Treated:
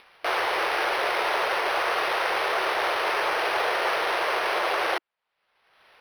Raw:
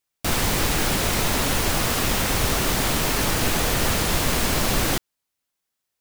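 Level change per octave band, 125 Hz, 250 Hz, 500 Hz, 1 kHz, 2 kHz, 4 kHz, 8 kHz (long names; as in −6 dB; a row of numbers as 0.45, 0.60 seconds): below −30 dB, −14.5 dB, +0.5 dB, +3.0 dB, +1.5 dB, −5.5 dB, −19.5 dB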